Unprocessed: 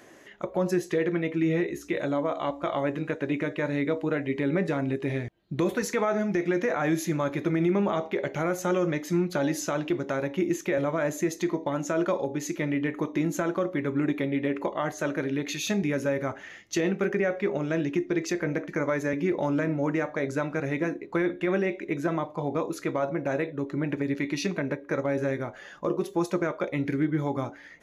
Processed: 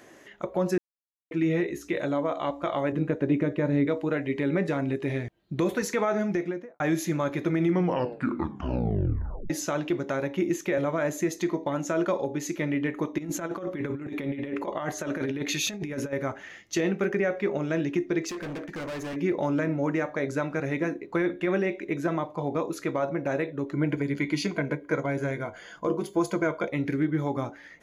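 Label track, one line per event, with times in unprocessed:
0.780000	1.310000	mute
2.920000	3.870000	tilt shelf lows +6.5 dB, about 700 Hz
6.250000	6.800000	studio fade out
7.620000	7.620000	tape stop 1.88 s
13.180000	16.130000	negative-ratio compressor -30 dBFS, ratio -0.5
18.290000	19.160000	hard clip -32.5 dBFS
23.730000	26.680000	ripple EQ crests per octave 1.8, crest to trough 10 dB

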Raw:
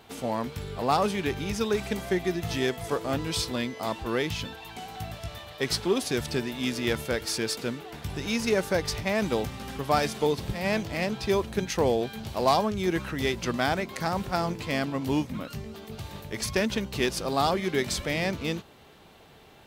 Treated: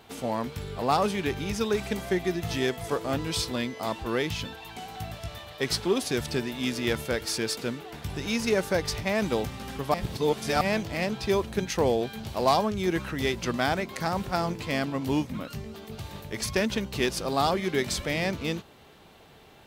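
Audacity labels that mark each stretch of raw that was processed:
9.940000	10.610000	reverse

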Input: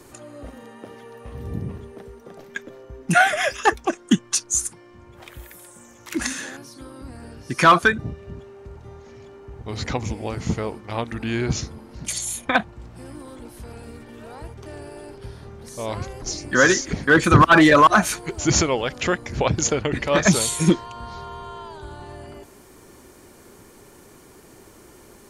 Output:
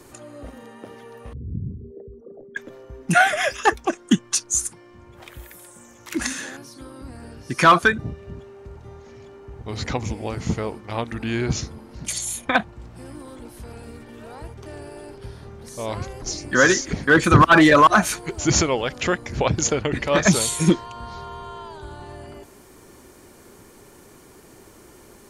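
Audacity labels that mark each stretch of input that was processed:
1.330000	2.570000	formant sharpening exponent 3

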